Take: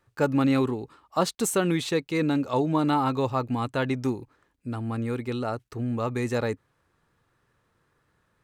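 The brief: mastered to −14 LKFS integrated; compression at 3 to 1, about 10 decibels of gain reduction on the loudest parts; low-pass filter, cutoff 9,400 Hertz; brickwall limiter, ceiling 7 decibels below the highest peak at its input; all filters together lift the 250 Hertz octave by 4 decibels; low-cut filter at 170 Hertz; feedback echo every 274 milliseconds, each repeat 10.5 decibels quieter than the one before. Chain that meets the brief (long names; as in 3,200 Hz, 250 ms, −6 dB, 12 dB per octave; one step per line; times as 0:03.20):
high-pass filter 170 Hz
low-pass filter 9,400 Hz
parametric band 250 Hz +5.5 dB
downward compressor 3 to 1, threshold −29 dBFS
brickwall limiter −22.5 dBFS
repeating echo 274 ms, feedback 30%, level −10.5 dB
level +18.5 dB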